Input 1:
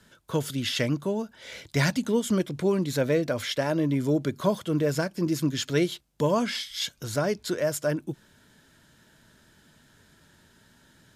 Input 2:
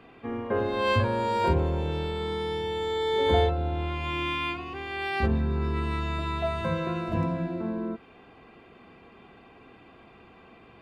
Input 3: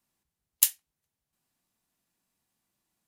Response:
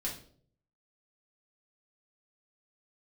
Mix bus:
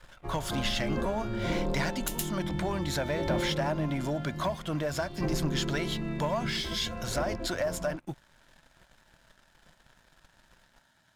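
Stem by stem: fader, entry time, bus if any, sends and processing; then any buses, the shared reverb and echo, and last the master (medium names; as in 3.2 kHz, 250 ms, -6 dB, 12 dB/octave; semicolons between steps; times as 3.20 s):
-3.5 dB, 0.00 s, bus A, no send, no echo send, none
-5.5 dB, 0.00 s, no bus, no send, no echo send, spectral gate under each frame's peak -10 dB weak; tilt EQ -4 dB/octave; comb 5.6 ms, depth 50%; auto duck -7 dB, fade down 0.35 s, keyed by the first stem
+2.5 dB, 1.45 s, bus A, no send, echo send -15.5 dB, none
bus A: 0.0 dB, resonant low shelf 560 Hz -6.5 dB, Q 3; compression 10:1, threshold -34 dBFS, peak gain reduction 21.5 dB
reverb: none
echo: delay 113 ms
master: treble shelf 8.4 kHz -9 dB; waveshaping leveller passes 2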